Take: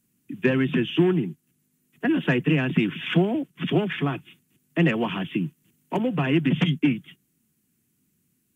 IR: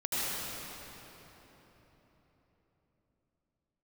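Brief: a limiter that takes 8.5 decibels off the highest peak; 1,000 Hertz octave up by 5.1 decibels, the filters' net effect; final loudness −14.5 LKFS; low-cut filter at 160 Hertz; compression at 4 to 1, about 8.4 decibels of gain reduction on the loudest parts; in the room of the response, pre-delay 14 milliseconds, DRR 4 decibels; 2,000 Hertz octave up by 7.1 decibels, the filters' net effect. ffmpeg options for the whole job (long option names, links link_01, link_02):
-filter_complex "[0:a]highpass=160,equalizer=frequency=1000:width_type=o:gain=5,equalizer=frequency=2000:width_type=o:gain=7.5,acompressor=threshold=-25dB:ratio=4,alimiter=limit=-19.5dB:level=0:latency=1,asplit=2[link_01][link_02];[1:a]atrim=start_sample=2205,adelay=14[link_03];[link_02][link_03]afir=irnorm=-1:irlink=0,volume=-13dB[link_04];[link_01][link_04]amix=inputs=2:normalize=0,volume=15.5dB"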